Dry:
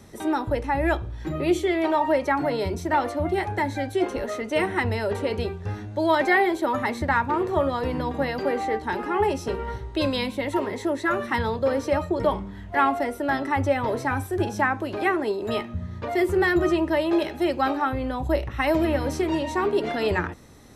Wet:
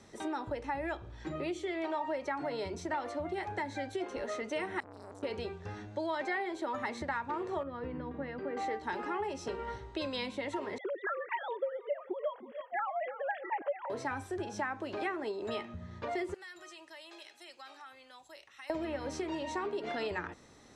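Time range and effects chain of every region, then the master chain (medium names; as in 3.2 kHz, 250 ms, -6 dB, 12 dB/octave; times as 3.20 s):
4.80–5.23 s: FFT filter 160 Hz 0 dB, 2.1 kHz -27 dB, 7.1 kHz +4 dB + compression 8:1, threshold -30 dBFS + transformer saturation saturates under 760 Hz
7.63–8.57 s: low-pass 1.5 kHz + peaking EQ 790 Hz -11 dB 1.3 oct
10.78–13.90 s: formants replaced by sine waves + feedback delay 319 ms, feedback 42%, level -18 dB
16.34–18.70 s: differentiator + compression 3:1, threshold -41 dBFS
whole clip: low-pass 8.4 kHz 24 dB/octave; compression, threshold -26 dBFS; bass shelf 200 Hz -10 dB; trim -5 dB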